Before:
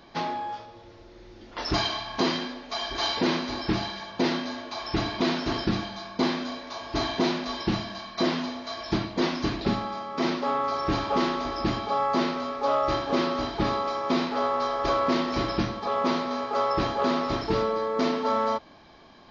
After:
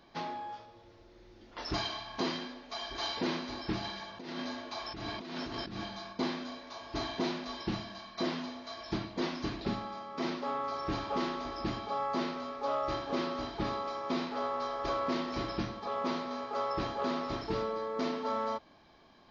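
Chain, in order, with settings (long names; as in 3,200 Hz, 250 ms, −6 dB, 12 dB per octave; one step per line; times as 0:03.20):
0:03.84–0:06.13: compressor whose output falls as the input rises −31 dBFS, ratio −1
level −8.5 dB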